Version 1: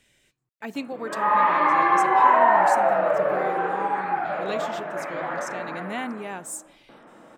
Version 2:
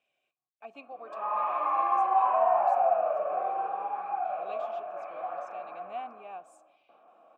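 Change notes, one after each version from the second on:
master: add formant filter a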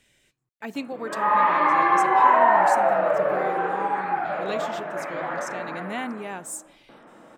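master: remove formant filter a

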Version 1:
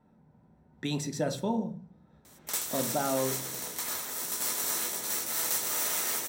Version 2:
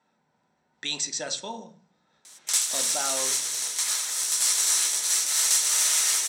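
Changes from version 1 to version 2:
speech: add Butterworth low-pass 8,500 Hz 48 dB per octave
master: add meter weighting curve ITU-R 468

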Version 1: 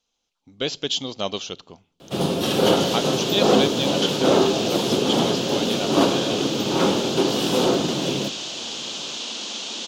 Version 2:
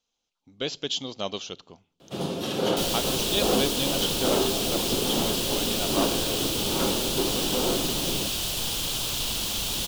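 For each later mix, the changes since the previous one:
speech −4.5 dB
first sound −7.5 dB
second sound: remove Chebyshev band-pass filter 220–6,800 Hz, order 4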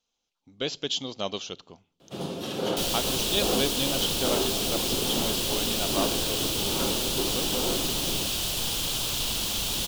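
first sound −3.5 dB

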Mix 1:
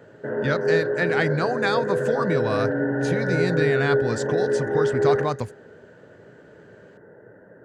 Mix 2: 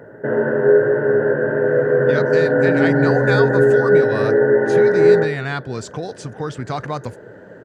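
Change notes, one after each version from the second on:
speech: entry +1.65 s
background +8.5 dB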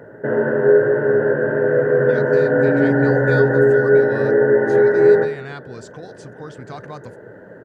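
speech −9.5 dB

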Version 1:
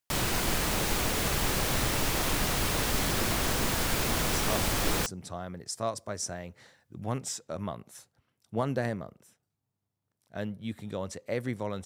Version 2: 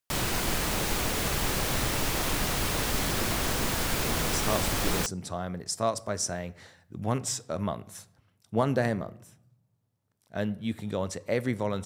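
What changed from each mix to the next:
speech +3.5 dB
reverb: on, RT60 0.80 s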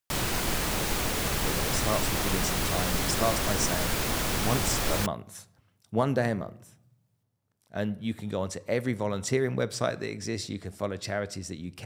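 speech: entry −2.60 s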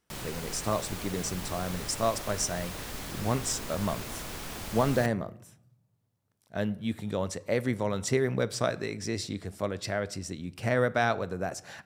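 speech: entry −1.20 s
background −10.5 dB

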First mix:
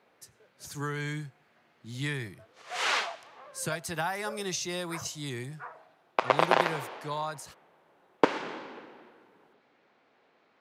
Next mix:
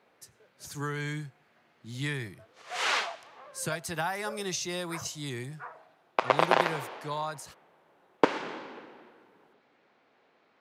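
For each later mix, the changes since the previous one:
nothing changed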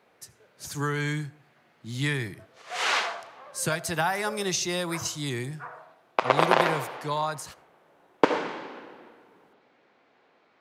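speech +5.0 dB
reverb: on, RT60 0.60 s

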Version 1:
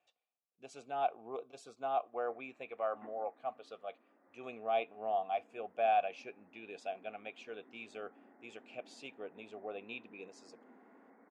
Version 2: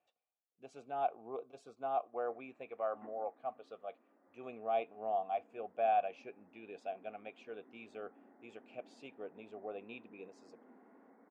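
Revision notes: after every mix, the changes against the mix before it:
master: add high-shelf EQ 2,200 Hz −11 dB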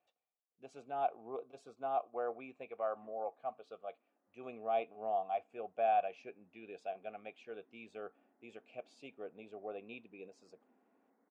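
background −12.0 dB

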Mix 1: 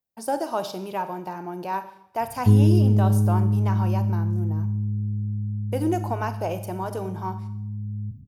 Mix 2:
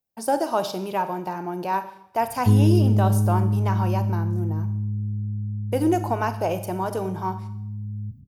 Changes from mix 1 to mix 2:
speech +3.5 dB
background: send −8.5 dB

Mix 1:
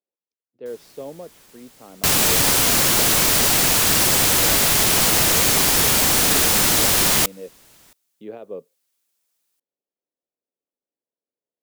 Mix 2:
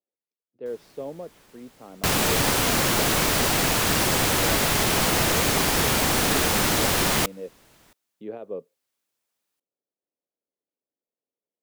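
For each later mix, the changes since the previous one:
master: add high-shelf EQ 3,500 Hz −9.5 dB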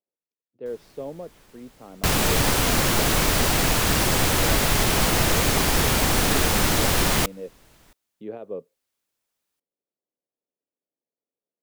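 master: add low-shelf EQ 69 Hz +12 dB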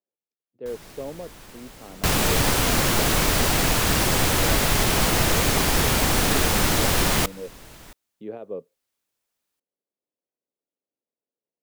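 first sound +10.0 dB

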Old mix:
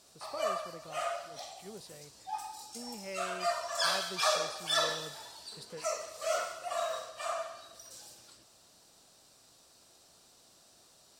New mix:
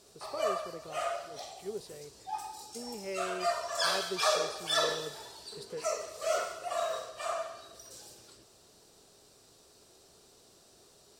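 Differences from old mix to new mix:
background: add low-shelf EQ 180 Hz +6.5 dB
master: add parametric band 410 Hz +11.5 dB 0.43 octaves

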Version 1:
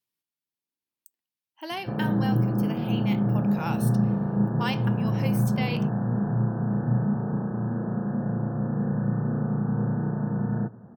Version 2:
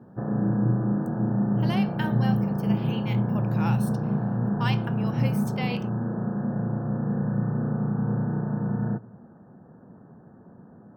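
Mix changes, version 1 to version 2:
background: entry −1.70 s
master: add high-shelf EQ 6,400 Hz −6 dB

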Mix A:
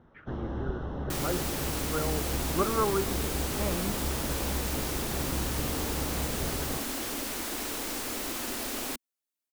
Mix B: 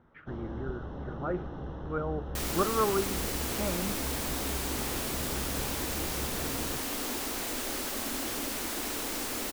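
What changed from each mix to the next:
first sound −4.5 dB
second sound: entry +1.25 s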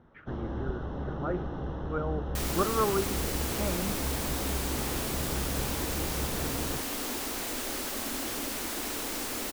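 first sound +4.0 dB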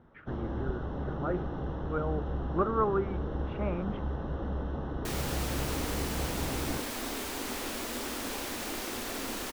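second sound: entry +2.70 s
master: add high-shelf EQ 5,700 Hz −6 dB

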